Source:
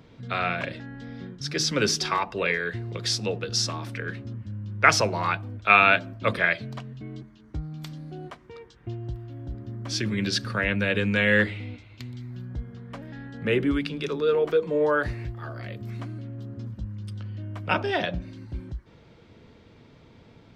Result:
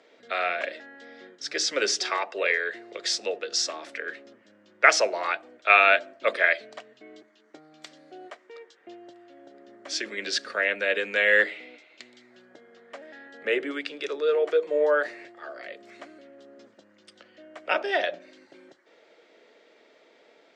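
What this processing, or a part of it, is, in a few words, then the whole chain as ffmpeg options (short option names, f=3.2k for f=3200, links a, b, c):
phone speaker on a table: -af "highpass=f=370:w=0.5412,highpass=f=370:w=1.3066,equalizer=f=620:t=q:w=4:g=6,equalizer=f=1k:t=q:w=4:g=-6,equalizer=f=1.9k:t=q:w=4:g=5,equalizer=f=7.3k:t=q:w=4:g=4,lowpass=f=8.6k:w=0.5412,lowpass=f=8.6k:w=1.3066,volume=-1dB"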